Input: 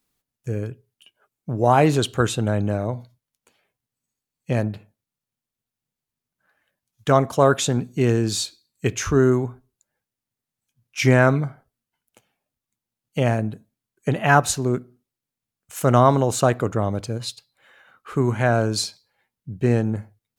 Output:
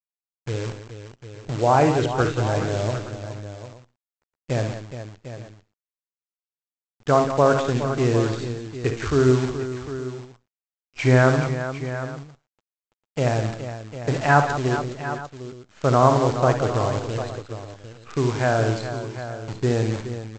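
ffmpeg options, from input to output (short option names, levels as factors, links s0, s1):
-af "lowpass=2200,equalizer=f=200:t=o:w=0.31:g=-13,aresample=16000,acrusher=bits=6:dc=4:mix=0:aa=0.000001,aresample=44100,aecho=1:1:55|70|178|418|750|867:0.299|0.266|0.299|0.282|0.237|0.112,volume=0.891"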